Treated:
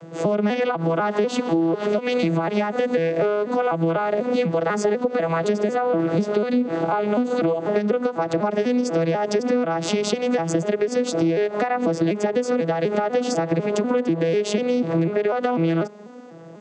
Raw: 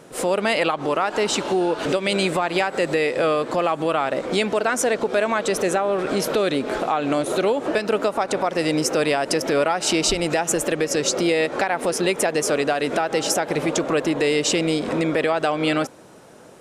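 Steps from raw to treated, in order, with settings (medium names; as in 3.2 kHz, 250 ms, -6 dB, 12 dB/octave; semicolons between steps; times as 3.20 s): vocoder on a broken chord major triad, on E3, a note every 247 ms; compression, threshold -24 dBFS, peak gain reduction 10.5 dB; trim +6.5 dB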